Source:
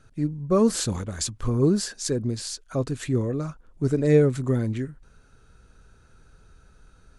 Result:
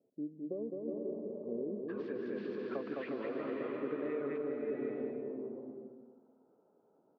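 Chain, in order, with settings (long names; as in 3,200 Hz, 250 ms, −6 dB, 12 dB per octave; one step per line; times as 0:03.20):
high-pass filter 230 Hz 24 dB per octave
bouncing-ball delay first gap 210 ms, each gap 0.7×, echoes 5
brickwall limiter −17 dBFS, peak gain reduction 10.5 dB
low-shelf EQ 300 Hz −9.5 dB
downward compressor, threshold −32 dBFS, peak gain reduction 8.5 dB
Butterworth low-pass 620 Hz 36 dB per octave, from 0:01.88 2,800 Hz, from 0:04.37 850 Hz
slow-attack reverb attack 650 ms, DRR 1.5 dB
level −4 dB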